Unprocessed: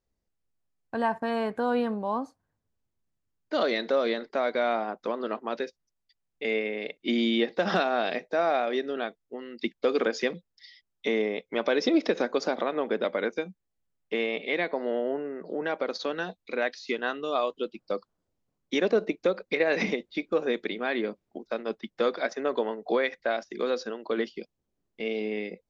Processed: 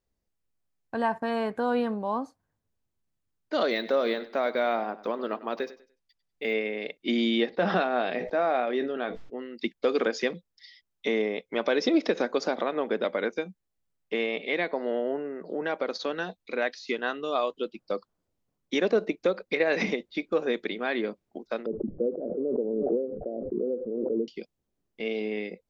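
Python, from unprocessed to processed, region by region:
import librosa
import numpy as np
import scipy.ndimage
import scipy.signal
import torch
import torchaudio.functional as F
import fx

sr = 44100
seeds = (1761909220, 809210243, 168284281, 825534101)

y = fx.chain(x, sr, fx.echo_feedback(ms=98, feedback_pct=27, wet_db=-16.5),
    fx.resample_linear(factor=2), at=(3.71, 6.53))
y = fx.chain(y, sr, fx.air_absorb(metres=200.0),
    fx.doubler(ms=16.0, db=-13.0),
    fx.sustainer(db_per_s=58.0), at=(7.5, 9.54))
y = fx.chain(y, sr, fx.steep_lowpass(hz=500.0, slope=36),
    fx.echo_single(ms=345, db=-22.5),
    fx.pre_swell(db_per_s=23.0), at=(21.66, 24.28))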